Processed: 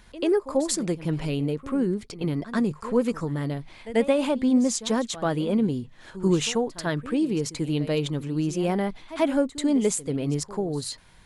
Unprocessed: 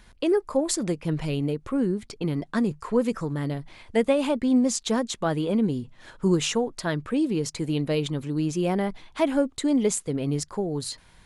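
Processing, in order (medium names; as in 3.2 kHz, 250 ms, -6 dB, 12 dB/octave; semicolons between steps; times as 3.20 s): pre-echo 89 ms -15.5 dB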